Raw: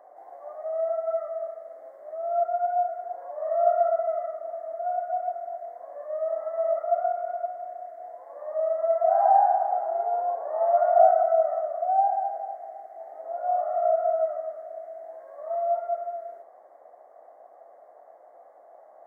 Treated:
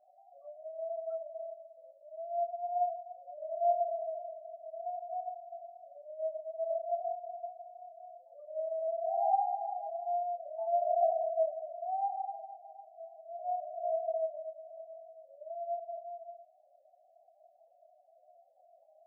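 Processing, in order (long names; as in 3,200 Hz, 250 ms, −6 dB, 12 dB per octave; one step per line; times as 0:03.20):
spectral peaks only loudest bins 4
multi-voice chorus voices 4, 0.13 Hz, delay 26 ms, depth 2.8 ms
level −6.5 dB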